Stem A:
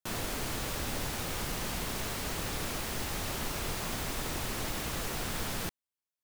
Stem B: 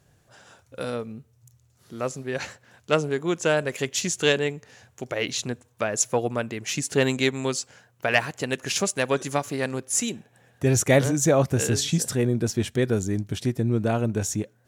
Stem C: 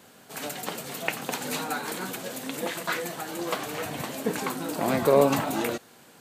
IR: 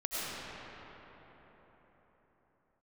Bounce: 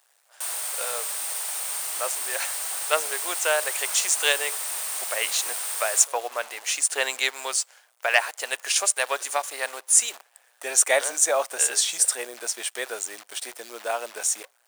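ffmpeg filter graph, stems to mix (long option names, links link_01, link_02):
-filter_complex "[0:a]highshelf=frequency=6700:gain=10.5,adelay=350,volume=-1dB[link_01];[1:a]volume=2dB[link_02];[2:a]alimiter=limit=-18dB:level=0:latency=1:release=270,adelay=1000,volume=-15.5dB[link_03];[link_01][link_02][link_03]amix=inputs=3:normalize=0,equalizer=frequency=8800:width_type=o:width=0.21:gain=15,acrusher=bits=7:dc=4:mix=0:aa=0.000001,highpass=frequency=630:width=0.5412,highpass=frequency=630:width=1.3066"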